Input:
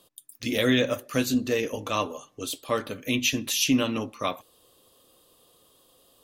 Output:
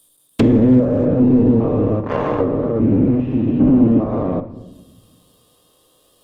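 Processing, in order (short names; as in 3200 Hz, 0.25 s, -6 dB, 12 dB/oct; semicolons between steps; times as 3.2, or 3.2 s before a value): stepped spectrum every 0.4 s; reverb removal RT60 0.59 s; 2.4–4.09 LPF 2700 Hz 24 dB/oct; in parallel at -4 dB: fuzz box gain 44 dB, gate -42 dBFS; on the sum: treble ducked by the level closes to 390 Hz, closed at -17.5 dBFS; on a send at -10.5 dB: reverb RT60 1.2 s, pre-delay 6 ms; on the sum: gain +7 dB; Opus 16 kbps 48000 Hz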